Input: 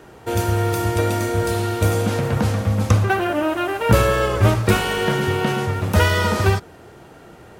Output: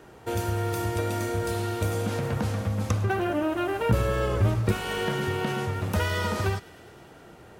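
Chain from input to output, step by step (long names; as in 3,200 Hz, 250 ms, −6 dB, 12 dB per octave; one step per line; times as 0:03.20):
0:03.04–0:04.72: low-shelf EQ 420 Hz +7.5 dB
downward compressor 2 to 1, threshold −20 dBFS, peak gain reduction 9.5 dB
on a send: delay with a high-pass on its return 104 ms, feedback 81%, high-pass 1,600 Hz, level −21.5 dB
on the sum: level −5.5 dB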